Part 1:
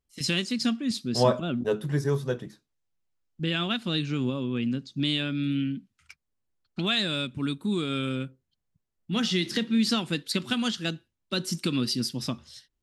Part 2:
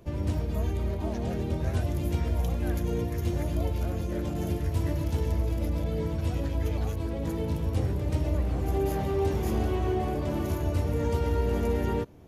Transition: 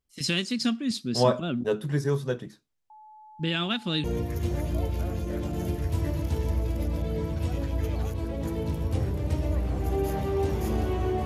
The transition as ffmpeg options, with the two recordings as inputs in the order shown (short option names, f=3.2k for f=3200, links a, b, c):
-filter_complex "[0:a]asettb=1/sr,asplit=3[a][b][c];[a]atrim=end=2.904[d];[b]atrim=start=2.9:end=4.04,asetpts=PTS-STARTPTS,afade=t=in:d=0.004:c=qsin,afade=t=out:st=1.136:d=0.004:c=qsin,aeval=exprs='val(0)+0.00447*sin(2*PI*860*n/s)':c=same[e];[c]atrim=start=4.036[f];[d][e]acrossfade=d=0.004:c1=hsin:c2=qsin[g];[g][f]acrossfade=d=0.004:c1=qsin:c2=hsin,apad=whole_dur=11.25,atrim=end=11.25,atrim=end=4.042[h];[1:a]atrim=start=2.858:end=10.07[i];[h][i]acrossfade=d=0.004:c1=hsin:c2=hsin"